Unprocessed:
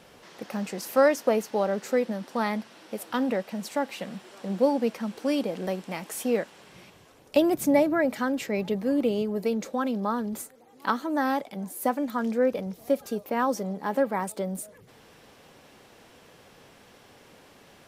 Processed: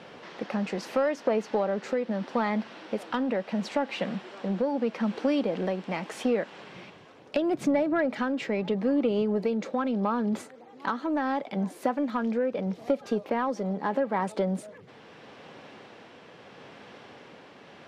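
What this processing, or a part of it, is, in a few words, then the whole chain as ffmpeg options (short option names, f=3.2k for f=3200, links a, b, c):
AM radio: -af "highpass=130,lowpass=3.6k,acompressor=threshold=-28dB:ratio=5,asoftclip=type=tanh:threshold=-20.5dB,tremolo=f=0.77:d=0.28,volume=7dB"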